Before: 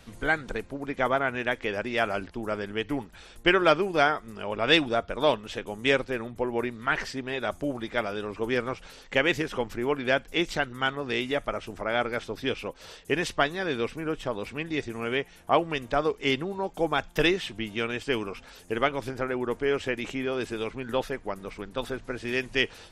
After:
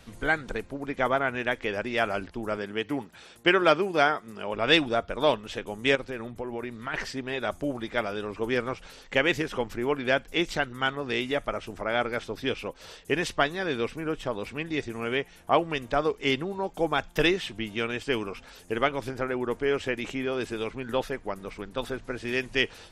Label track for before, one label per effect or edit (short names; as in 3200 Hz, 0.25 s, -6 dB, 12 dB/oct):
2.570000	4.540000	HPF 120 Hz
5.950000	6.940000	compressor 3:1, threshold -31 dBFS